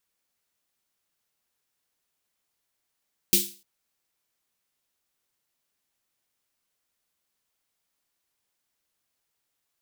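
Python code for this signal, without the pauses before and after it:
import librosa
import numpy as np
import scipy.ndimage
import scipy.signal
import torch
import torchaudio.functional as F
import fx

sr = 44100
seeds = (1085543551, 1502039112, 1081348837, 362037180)

y = fx.drum_snare(sr, seeds[0], length_s=0.3, hz=200.0, second_hz=350.0, noise_db=9.5, noise_from_hz=2900.0, decay_s=0.32, noise_decay_s=0.36)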